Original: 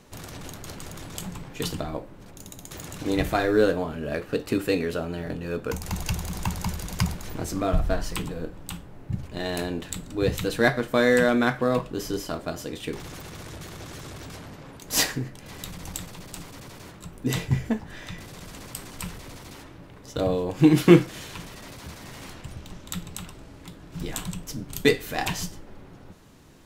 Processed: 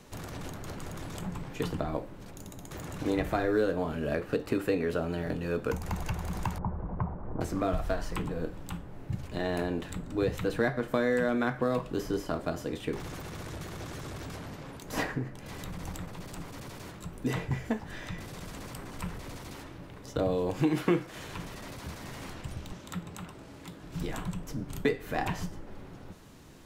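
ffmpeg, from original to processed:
-filter_complex "[0:a]asettb=1/sr,asplit=3[s0][s1][s2];[s0]atrim=end=6.584[s3];[s1]atrim=start=6.58:end=7.41,asetpts=PTS-STARTPTS,afade=t=in:d=0.004:c=qsin,afade=t=out:st=0.826:d=0.004:c=qsin,lowpass=f=1100:w=0.5412,lowpass=f=1100:w=1.3066[s4];[s2]atrim=start=7.406[s5];[s3][s4]acrossfade=d=0.004:c1=hsin:c2=qsin[s6];[s6][s5]acrossfade=d=0.004:c1=qsin:c2=hsin,asettb=1/sr,asplit=3[s7][s8][s9];[s7]atrim=end=22.724[s10];[s8]atrim=start=22.72:end=23.84,asetpts=PTS-STARTPTS,afade=t=in:d=0.004:c=qsin,afade=t=out:st=1.116:d=0.004:c=qsin,highpass=f=130:p=1[s11];[s9]atrim=start=23.836[s12];[s10][s11]acrossfade=d=0.004:c1=hsin:c2=qsin[s13];[s13][s12]acrossfade=d=0.004:c1=qsin:c2=hsin,acrossover=split=410|2100[s14][s15][s16];[s14]acompressor=threshold=0.0316:ratio=4[s17];[s15]acompressor=threshold=0.0355:ratio=4[s18];[s16]acompressor=threshold=0.00355:ratio=4[s19];[s17][s18][s19]amix=inputs=3:normalize=0"

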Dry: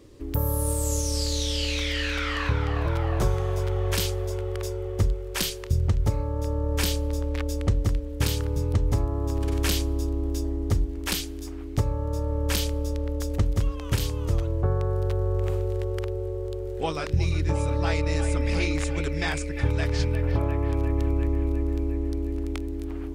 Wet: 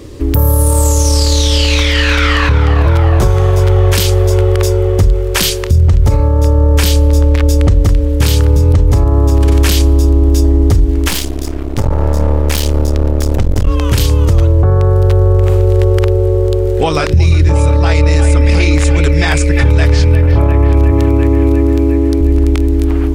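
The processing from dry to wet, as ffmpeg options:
-filter_complex "[0:a]asettb=1/sr,asplit=3[s0][s1][s2];[s0]atrim=end=0.704[s3];[s1]atrim=start=0.7:end=2.17,asetpts=PTS-STARTPTS,afade=t=in:d=0.004:c=qsin,afade=t=out:st=1.466:d=0.004:c=qsin,equalizer=f=1000:w=1.5:g=7[s4];[s2]atrim=start=2.166[s5];[s3][s4]acrossfade=d=0.004:c1=hsin:c2=qsin[s6];[s6][s5]acrossfade=d=0.004:c1=qsin:c2=hsin,asettb=1/sr,asplit=3[s7][s8][s9];[s7]atrim=end=11.084[s10];[s8]atrim=start=11.08:end=13.67,asetpts=PTS-STARTPTS,afade=t=in:d=0.004:c=qsin,afade=t=out:st=2.586:d=0.004:c=qsin,aeval=exprs='max(val(0),0)':c=same[s11];[s9]atrim=start=13.666[s12];[s10][s11]acrossfade=d=0.004:c1=hsin:c2=qsin[s13];[s13][s12]acrossfade=d=0.004:c1=qsin:c2=hsin,asettb=1/sr,asplit=3[s14][s15][s16];[s14]atrim=end=20.914[s17];[s15]atrim=start=20.91:end=22.21,asetpts=PTS-STARTPTS,afade=t=in:d=0.004:c=qsin,afade=t=out:st=1.296:d=0.004:c=qsin,highpass=f=84:w=0.5412,highpass=f=84:w=1.3066[s18];[s16]atrim=start=22.206[s19];[s17][s18]acrossfade=d=0.004:c1=hsin:c2=qsin[s20];[s20][s19]acrossfade=d=0.004:c1=qsin:c2=hsin,equalizer=f=77:t=o:w=0.71:g=5,alimiter=level_in=9.44:limit=0.891:release=50:level=0:latency=1,volume=0.891"

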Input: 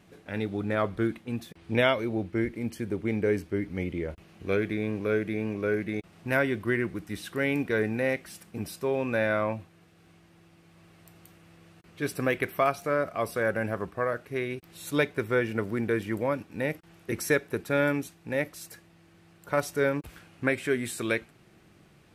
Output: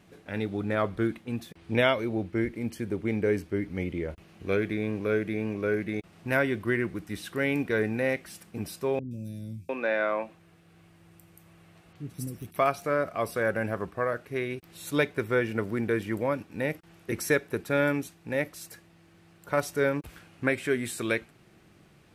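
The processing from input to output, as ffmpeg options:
-filter_complex "[0:a]asettb=1/sr,asplit=3[s0][s1][s2];[s0]atrim=end=8.994[s3];[s1]atrim=start=8.99:end=12.56,asetpts=PTS-STARTPTS,afade=t=in:d=0.004:c=qsin,afade=t=out:st=3.566:d=0.004:c=qsin,acrossover=split=250|5300[s4][s5][s6];[s6]adelay=120[s7];[s5]adelay=700[s8];[s4][s8][s7]amix=inputs=3:normalize=0,atrim=end_sample=157437[s9];[s2]atrim=start=12.556[s10];[s3][s9]acrossfade=d=0.004:c1=hsin:c2=qsin[s11];[s11][s10]acrossfade=d=0.004:c1=qsin:c2=hsin"

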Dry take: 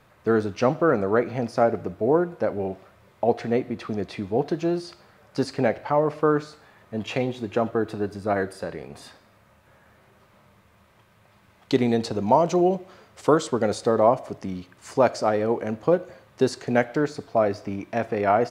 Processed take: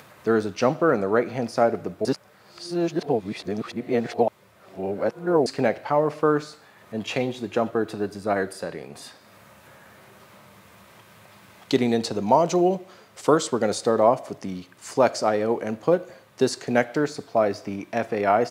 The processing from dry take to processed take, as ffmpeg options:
-filter_complex "[0:a]asplit=3[s0][s1][s2];[s0]atrim=end=2.052[s3];[s1]atrim=start=2.048:end=5.462,asetpts=PTS-STARTPTS,areverse[s4];[s2]atrim=start=5.458[s5];[s3][s4]acrossfade=d=0.004:c1=hsin:c2=hsin[s6];[s6][s5]acrossfade=d=0.004:c1=hsin:c2=hsin,highpass=120,highshelf=f=3800:g=6.5,acompressor=mode=upward:threshold=0.00891:ratio=2.5"

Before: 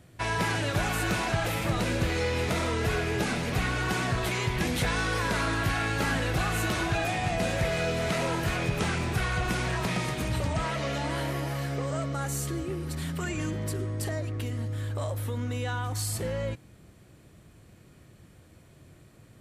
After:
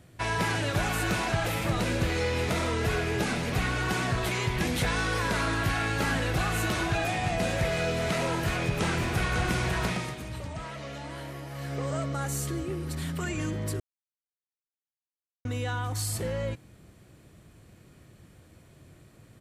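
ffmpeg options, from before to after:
-filter_complex "[0:a]asplit=2[s0][s1];[s1]afade=t=in:st=8.27:d=0.01,afade=t=out:st=9.35:d=0.01,aecho=0:1:550|1100|1650:0.501187|0.125297|0.0313242[s2];[s0][s2]amix=inputs=2:normalize=0,asplit=5[s3][s4][s5][s6][s7];[s3]atrim=end=10.21,asetpts=PTS-STARTPTS,afade=t=out:st=9.85:d=0.36:silence=0.375837[s8];[s4]atrim=start=10.21:end=11.5,asetpts=PTS-STARTPTS,volume=0.376[s9];[s5]atrim=start=11.5:end=13.8,asetpts=PTS-STARTPTS,afade=t=in:d=0.36:silence=0.375837,afade=t=out:st=2.296:d=0.004:c=hsin[s10];[s6]atrim=start=13.8:end=15.45,asetpts=PTS-STARTPTS,volume=0[s11];[s7]atrim=start=15.45,asetpts=PTS-STARTPTS,afade=t=in:d=0.004:c=hsin[s12];[s8][s9][s10][s11][s12]concat=n=5:v=0:a=1"

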